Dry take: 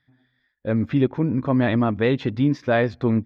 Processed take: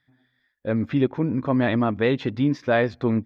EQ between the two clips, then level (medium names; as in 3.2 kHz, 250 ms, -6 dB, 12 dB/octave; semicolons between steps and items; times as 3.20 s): bass shelf 170 Hz -5 dB; 0.0 dB